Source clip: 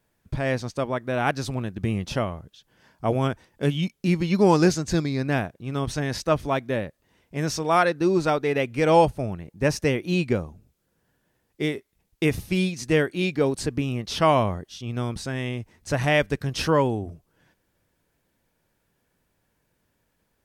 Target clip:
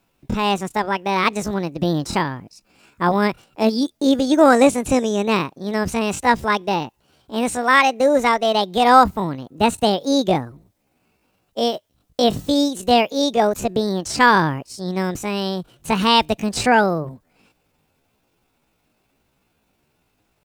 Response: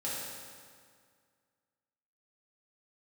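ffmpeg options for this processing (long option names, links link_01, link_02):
-filter_complex "[0:a]asetrate=68011,aresample=44100,atempo=0.64842,acrossover=split=9400[link_01][link_02];[link_02]acompressor=threshold=-49dB:ratio=4:attack=1:release=60[link_03];[link_01][link_03]amix=inputs=2:normalize=0,volume=5.5dB"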